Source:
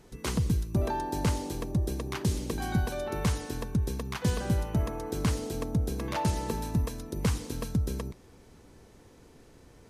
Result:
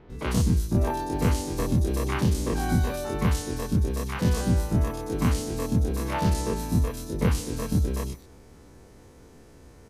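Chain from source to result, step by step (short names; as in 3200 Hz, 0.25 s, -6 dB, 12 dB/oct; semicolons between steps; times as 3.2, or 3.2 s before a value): spectral dilation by 60 ms; bell 69 Hz +6 dB 0.29 oct; bands offset in time lows, highs 0.1 s, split 3300 Hz; 1.58–2.96 three-band squash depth 70%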